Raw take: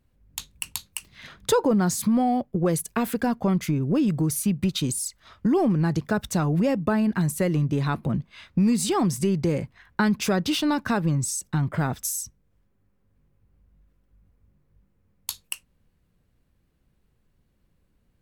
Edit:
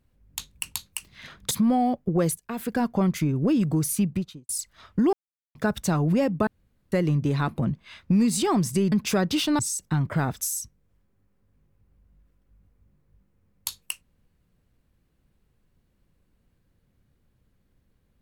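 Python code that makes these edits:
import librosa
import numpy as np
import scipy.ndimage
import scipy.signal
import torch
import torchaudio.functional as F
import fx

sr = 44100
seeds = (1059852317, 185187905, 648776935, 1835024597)

y = fx.studio_fade_out(x, sr, start_s=4.46, length_s=0.5)
y = fx.edit(y, sr, fx.cut(start_s=1.51, length_s=0.47),
    fx.fade_in_from(start_s=2.85, length_s=0.46, floor_db=-19.0),
    fx.silence(start_s=5.6, length_s=0.42),
    fx.room_tone_fill(start_s=6.94, length_s=0.45),
    fx.cut(start_s=9.39, length_s=0.68),
    fx.cut(start_s=10.74, length_s=0.47), tone=tone)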